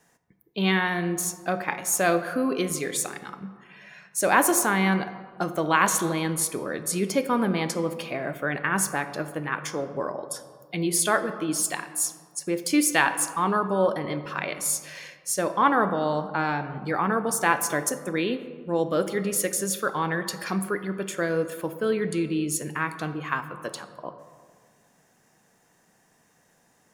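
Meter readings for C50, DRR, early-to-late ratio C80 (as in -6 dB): 11.5 dB, 9.5 dB, 12.5 dB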